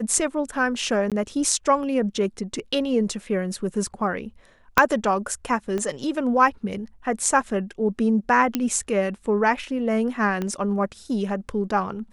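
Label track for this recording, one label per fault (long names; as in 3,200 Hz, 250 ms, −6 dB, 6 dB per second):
1.100000	1.120000	drop-out 17 ms
4.780000	4.780000	click −1 dBFS
5.780000	5.780000	click −16 dBFS
8.550000	8.550000	click −8 dBFS
10.420000	10.420000	click −15 dBFS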